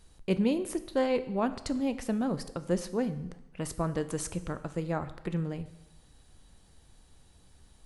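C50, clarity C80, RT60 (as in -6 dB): 14.0 dB, 16.0 dB, 0.95 s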